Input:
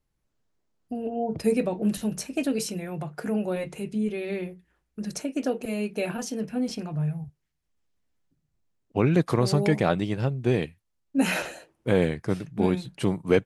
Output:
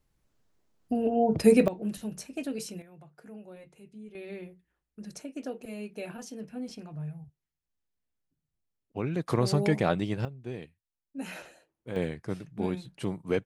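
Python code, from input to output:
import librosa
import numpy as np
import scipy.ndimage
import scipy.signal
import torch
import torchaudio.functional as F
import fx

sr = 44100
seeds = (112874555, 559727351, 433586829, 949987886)

y = fx.gain(x, sr, db=fx.steps((0.0, 4.0), (1.68, -8.0), (2.82, -19.0), (4.15, -10.0), (9.28, -3.0), (10.25, -15.0), (11.96, -7.5)))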